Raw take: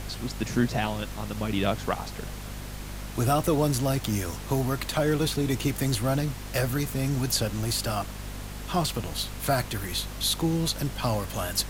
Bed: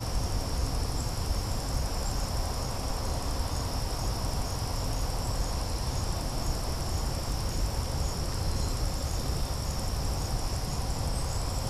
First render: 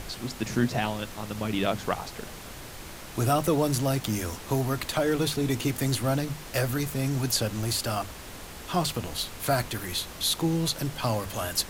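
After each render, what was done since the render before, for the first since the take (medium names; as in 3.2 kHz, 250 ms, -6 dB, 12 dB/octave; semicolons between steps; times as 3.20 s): hum notches 50/100/150/200/250 Hz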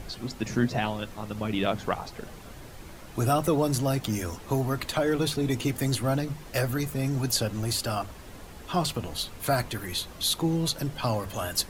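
noise reduction 8 dB, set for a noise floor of -42 dBFS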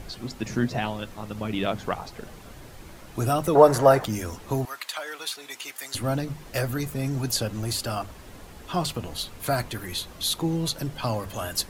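3.55–4.05 s: high-order bell 870 Hz +14.5 dB 2.5 oct; 4.65–5.95 s: high-pass 1.1 kHz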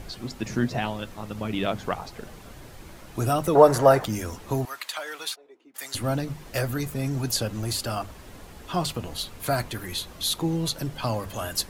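5.34–5.74 s: band-pass filter 670 Hz -> 220 Hz, Q 4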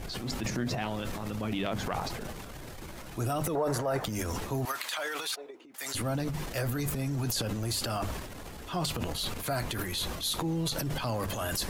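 transient shaper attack -6 dB, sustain +10 dB; compression 6:1, threshold -28 dBFS, peak gain reduction 16 dB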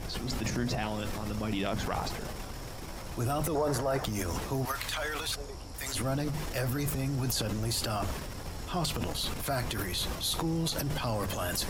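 add bed -12.5 dB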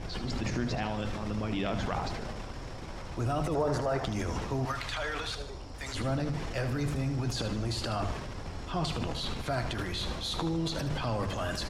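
distance through air 90 m; feedback delay 76 ms, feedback 47%, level -10 dB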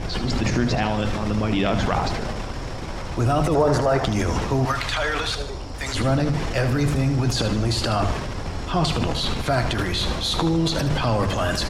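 trim +10.5 dB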